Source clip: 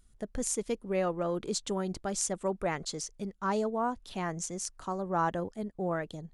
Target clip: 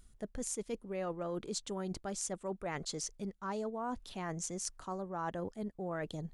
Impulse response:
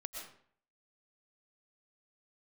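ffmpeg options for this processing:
-af "areverse,acompressor=threshold=-41dB:ratio=4,areverse,volume=3.5dB"

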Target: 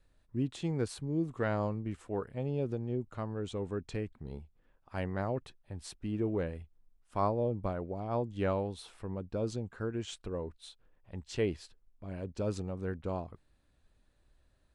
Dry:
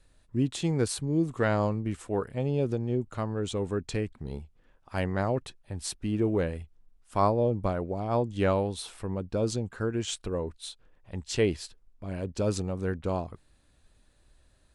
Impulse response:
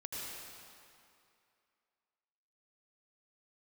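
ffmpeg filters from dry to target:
-af "highshelf=frequency=4700:gain=-9,volume=-6dB"

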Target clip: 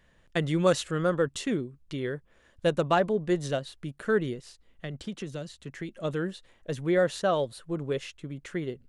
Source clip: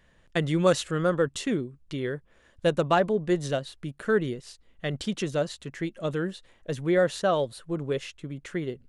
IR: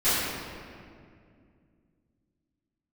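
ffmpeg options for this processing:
-filter_complex "[0:a]asettb=1/sr,asplit=3[link_01][link_02][link_03];[link_01]atrim=end=4.414[link_04];[link_02]atrim=start=4.41:end=5.89,asetpts=PTS-STARTPTS,afade=type=in:duration=0.004:curve=qsin,afade=type=out:start_time=1.476:duration=0.004:curve=qsin,acrossover=split=280|2100[link_05][link_06][link_07];[link_05]acompressor=threshold=-35dB:ratio=4[link_08];[link_06]acompressor=threshold=-39dB:ratio=4[link_09];[link_07]acompressor=threshold=-46dB:ratio=4[link_10];[link_08][link_09][link_10]amix=inputs=3:normalize=0[link_11];[link_03]atrim=start=5.886[link_12];[link_04][link_11]acrossfade=duration=0.004:curve1=hsin:curve2=qsin[link_13];[link_13][link_12]acrossfade=duration=0.004:curve1=qsin:curve2=hsin,volume=-1.5dB"

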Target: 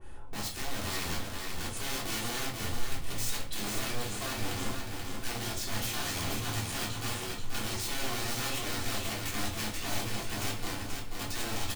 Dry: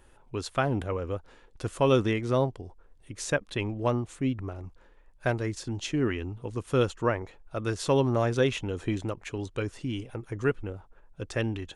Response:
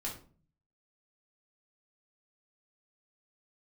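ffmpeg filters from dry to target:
-filter_complex "[0:a]asettb=1/sr,asplit=3[link_01][link_02][link_03];[link_01]atrim=end=2.374[link_04];[link_02]atrim=start=2.37:end=4.53,asetpts=PTS-STARTPTS,afade=type=in:duration=0.004:curve=qsin,afade=type=out:start_time=2.156:duration=0.004:curve=qsin,lowshelf=frequency=65:gain=6[link_05];[link_03]atrim=start=4.526[link_06];[link_04][link_05]acrossfade=duration=0.004:curve1=hsin:curve2=qsin[link_07];[link_07][link_06]acrossfade=duration=0.004:curve1=qsin:curve2=hsin,acompressor=threshold=-37dB:ratio=10,alimiter=level_in=10.5dB:limit=-24dB:level=0:latency=1:release=38,volume=-10.5dB,acontrast=44,aeval=exprs='(mod(53.1*val(0)+1,2)-1)/53.1':channel_layout=same,aecho=1:1:483|966|1449|1932|2415:0.596|0.226|0.086|0.0327|0.0124[link_08];[1:a]atrim=start_sample=2205[link_09];[link_08][link_09]afir=irnorm=-1:irlink=0,adynamicequalizer=threshold=0.002:dfrequency=2200:dqfactor=0.7:tfrequency=2200:tqfactor=0.7:attack=5:release=100:ratio=0.375:range=3.5:mode=boostabove:tftype=highshelf"

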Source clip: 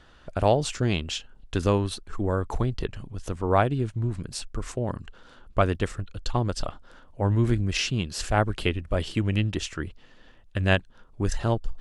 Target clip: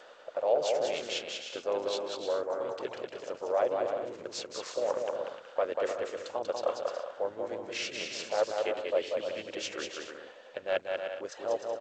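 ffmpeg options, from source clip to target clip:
ffmpeg -i in.wav -filter_complex "[0:a]areverse,acompressor=threshold=-34dB:ratio=6,areverse,asplit=3[link_01][link_02][link_03];[link_02]asetrate=37084,aresample=44100,atempo=1.18921,volume=-6dB[link_04];[link_03]asetrate=58866,aresample=44100,atempo=0.749154,volume=-15dB[link_05];[link_01][link_04][link_05]amix=inputs=3:normalize=0,highpass=frequency=540:width_type=q:width=4.9,aecho=1:1:190|304|372.4|413.4|438.1:0.631|0.398|0.251|0.158|0.1" -ar 16000 -c:a g722 out.g722

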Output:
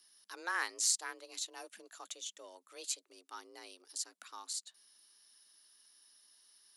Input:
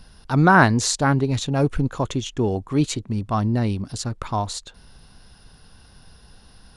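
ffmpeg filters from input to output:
ffmpeg -i in.wav -af "aeval=exprs='0.794*(cos(1*acos(clip(val(0)/0.794,-1,1)))-cos(1*PI/2))+0.00794*(cos(7*acos(clip(val(0)/0.794,-1,1)))-cos(7*PI/2))':channel_layout=same,aderivative,afreqshift=170,volume=-5.5dB" out.wav

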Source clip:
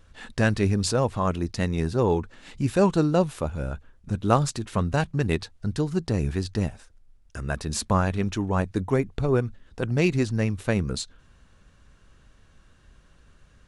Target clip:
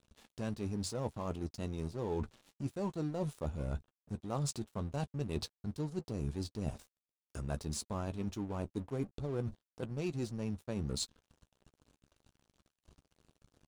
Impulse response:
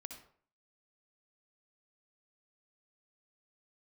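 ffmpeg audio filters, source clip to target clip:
-filter_complex "[0:a]highpass=frequency=42:poles=1,equalizer=frequency=1800:width_type=o:width=0.91:gain=-13,areverse,acompressor=threshold=-37dB:ratio=6,areverse,aeval=exprs='sgn(val(0))*max(abs(val(0))-0.00211,0)':channel_layout=same,asplit=2[link_01][link_02];[link_02]adelay=14,volume=-12dB[link_03];[link_01][link_03]amix=inputs=2:normalize=0,volume=2.5dB"

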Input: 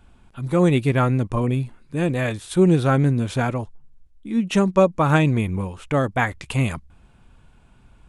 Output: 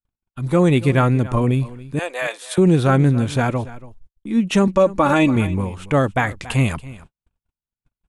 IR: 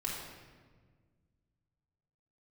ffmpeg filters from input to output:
-filter_complex "[0:a]asettb=1/sr,asplit=3[link_01][link_02][link_03];[link_01]atrim=end=1.994[link_04];[link_02]atrim=start=1.99:end=2.58,asetpts=PTS-STARTPTS,afade=type=in:duration=0.004:curve=qsin,afade=type=out:start_time=0.586:duration=0.004:curve=qsin,highpass=frequency=560:width=0.5412,highpass=frequency=560:width=1.3066[link_05];[link_03]atrim=start=2.576[link_06];[link_04][link_05]acrossfade=duration=0.004:curve1=hsin:curve2=qsin[link_07];[link_07][link_06]acrossfade=duration=0.004:curve1=qsin:curve2=hsin,asettb=1/sr,asplit=3[link_08][link_09][link_10];[link_08]atrim=end=4.674[link_11];[link_09]atrim=start=4.67:end=5.36,asetpts=PTS-STARTPTS,afade=type=in:duration=0.004:curve=qsin,afade=type=out:start_time=0.686:duration=0.004:curve=qsin,aecho=1:1:3.5:0.7,atrim=end_sample=30429[link_12];[link_10]atrim=start=5.356[link_13];[link_11][link_12]acrossfade=duration=0.004:curve1=hsin:curve2=qsin[link_14];[link_14][link_13]acrossfade=duration=0.004:curve1=qsin:curve2=hsin,aecho=1:1:281:0.119,agate=range=-49dB:threshold=-44dB:ratio=16:detection=peak,alimiter=level_in=8.5dB:limit=-1dB:release=50:level=0:latency=1,volume=-5dB"

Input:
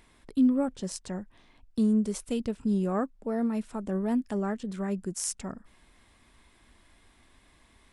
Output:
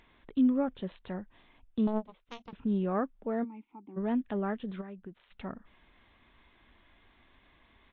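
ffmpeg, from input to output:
ffmpeg -i in.wav -filter_complex "[0:a]lowshelf=frequency=330:gain=-3.5,asplit=3[link_01][link_02][link_03];[link_01]afade=type=out:start_time=4.8:duration=0.02[link_04];[link_02]acompressor=threshold=-40dB:ratio=16,afade=type=in:start_time=4.8:duration=0.02,afade=type=out:start_time=5.3:duration=0.02[link_05];[link_03]afade=type=in:start_time=5.3:duration=0.02[link_06];[link_04][link_05][link_06]amix=inputs=3:normalize=0,aresample=8000,aresample=44100,asettb=1/sr,asplit=3[link_07][link_08][link_09];[link_07]atrim=end=1.874[link_10];[link_08]atrim=start=1.87:end=2.53,asetpts=PTS-STARTPTS,afade=type=in:duration=0.004:curve=qsin,afade=type=out:start_time=0.656:duration=0.004:curve=qsin,aeval=exprs='0.106*(cos(1*acos(clip(val(0)/0.106,-1,1)))-cos(1*PI/2))+0.0531*(cos(3*acos(clip(val(0)/0.106,-1,1)))-cos(3*PI/2))+0.0106*(cos(5*acos(clip(val(0)/0.106,-1,1)))-cos(5*PI/2))+0.00211*(cos(7*acos(clip(val(0)/0.106,-1,1)))-cos(7*PI/2))':channel_layout=same[link_11];[link_09]atrim=start=2.526[link_12];[link_10][link_11]acrossfade=duration=0.004:curve1=hsin:curve2=qsin[link_13];[link_13][link_12]acrossfade=duration=0.004:curve1=qsin:curve2=hsin,asplit=3[link_14][link_15][link_16];[link_14]afade=type=out:start_time=3.43:duration=0.02[link_17];[link_15]asplit=3[link_18][link_19][link_20];[link_18]bandpass=frequency=300:width_type=q:width=8,volume=0dB[link_21];[link_19]bandpass=frequency=870:width_type=q:width=8,volume=-6dB[link_22];[link_20]bandpass=frequency=2240:width_type=q:width=8,volume=-9dB[link_23];[link_21][link_22][link_23]amix=inputs=3:normalize=0,afade=type=in:start_time=3.43:duration=0.02,afade=type=out:start_time=3.96:duration=0.02[link_24];[link_16]afade=type=in:start_time=3.96:duration=0.02[link_25];[link_17][link_24][link_25]amix=inputs=3:normalize=0" -ar 16000 -c:a libmp3lame -b:a 40k out.mp3

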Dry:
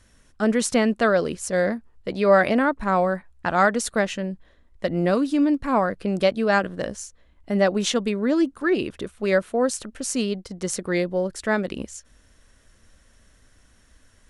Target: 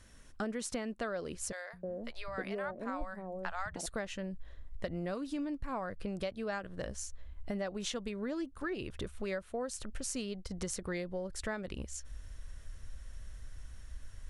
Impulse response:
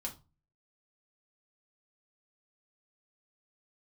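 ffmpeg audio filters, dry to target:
-filter_complex "[0:a]asubboost=boost=5.5:cutoff=95,acompressor=threshold=-34dB:ratio=6,asettb=1/sr,asplit=3[link_01][link_02][link_03];[link_01]atrim=end=1.524[link_04];[link_02]atrim=start=1.52:end=3.86,asetpts=PTS-STARTPTS,afade=type=in:duration=0.004:curve=qsin,afade=type=out:start_time=2.336:duration=0.004:curve=qsin,acrossover=split=150|670[link_05][link_06][link_07];[link_05]adelay=210[link_08];[link_06]adelay=310[link_09];[link_08][link_09][link_07]amix=inputs=3:normalize=0,atrim=end_sample=103194[link_10];[link_03]atrim=start=3.856[link_11];[link_04][link_10]acrossfade=duration=0.004:curve1=hsin:curve2=qsin[link_12];[link_12][link_11]acrossfade=duration=0.004:curve1=qsin:curve2=hsin,volume=-1.5dB"

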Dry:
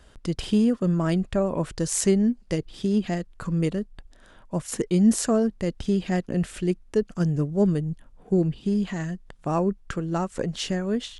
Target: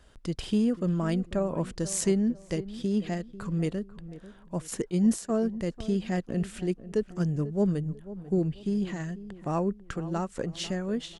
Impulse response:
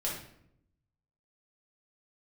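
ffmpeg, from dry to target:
-filter_complex "[0:a]asplit=3[link_01][link_02][link_03];[link_01]afade=type=out:start_time=4.9:duration=0.02[link_04];[link_02]agate=range=-33dB:threshold=-18dB:ratio=3:detection=peak,afade=type=in:start_time=4.9:duration=0.02,afade=type=out:start_time=5.38:duration=0.02[link_05];[link_03]afade=type=in:start_time=5.38:duration=0.02[link_06];[link_04][link_05][link_06]amix=inputs=3:normalize=0,asplit=2[link_07][link_08];[link_08]adelay=493,lowpass=frequency=1300:poles=1,volume=-15dB,asplit=2[link_09][link_10];[link_10]adelay=493,lowpass=frequency=1300:poles=1,volume=0.37,asplit=2[link_11][link_12];[link_12]adelay=493,lowpass=frequency=1300:poles=1,volume=0.37[link_13];[link_07][link_09][link_11][link_13]amix=inputs=4:normalize=0,volume=-4.5dB"

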